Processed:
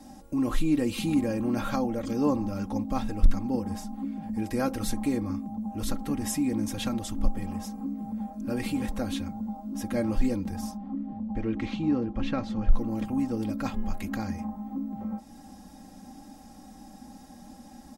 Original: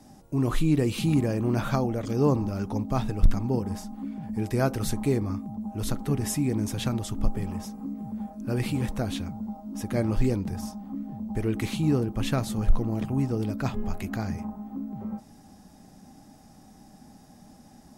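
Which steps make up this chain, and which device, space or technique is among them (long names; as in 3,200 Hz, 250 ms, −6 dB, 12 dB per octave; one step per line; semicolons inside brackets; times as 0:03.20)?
comb filter 3.7 ms, depth 72%
0:10.77–0:12.72: high-frequency loss of the air 190 metres
parallel compression (in parallel at −0.5 dB: downward compressor, threshold −39 dBFS, peak gain reduction 27.5 dB)
on the sum: level −4.5 dB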